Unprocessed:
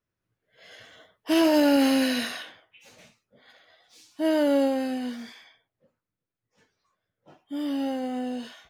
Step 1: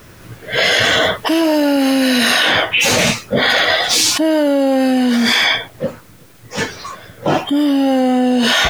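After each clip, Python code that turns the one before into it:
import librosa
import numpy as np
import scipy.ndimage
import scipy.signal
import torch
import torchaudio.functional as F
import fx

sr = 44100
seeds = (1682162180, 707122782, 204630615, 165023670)

y = fx.env_flatten(x, sr, amount_pct=100)
y = y * 10.0 ** (5.0 / 20.0)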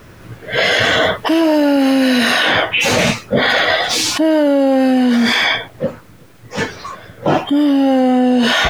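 y = fx.high_shelf(x, sr, hz=3800.0, db=-8.0)
y = y * 10.0 ** (1.5 / 20.0)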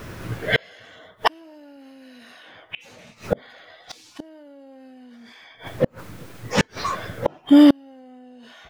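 y = x + 10.0 ** (-23.0 / 20.0) * np.pad(x, (int(114 * sr / 1000.0), 0))[:len(x)]
y = fx.gate_flip(y, sr, shuts_db=-7.0, range_db=-36)
y = y * 10.0 ** (3.0 / 20.0)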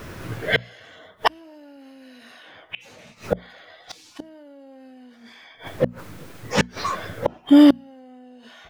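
y = fx.hum_notches(x, sr, base_hz=60, count=4)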